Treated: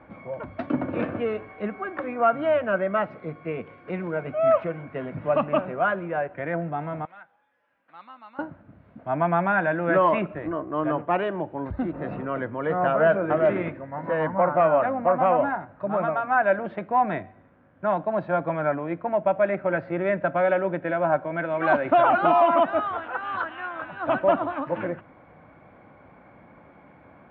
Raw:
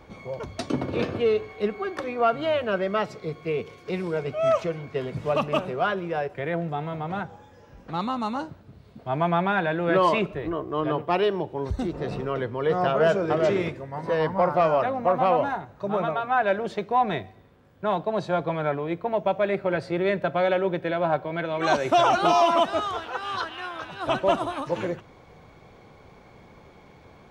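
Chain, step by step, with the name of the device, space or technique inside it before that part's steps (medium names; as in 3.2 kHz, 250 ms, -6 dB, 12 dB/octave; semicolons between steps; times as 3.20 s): bass cabinet (cabinet simulation 75–2300 Hz, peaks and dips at 81 Hz -5 dB, 130 Hz -4 dB, 280 Hz +5 dB, 420 Hz -9 dB, 600 Hz +4 dB, 1.5 kHz +4 dB); 7.05–8.39 s: differentiator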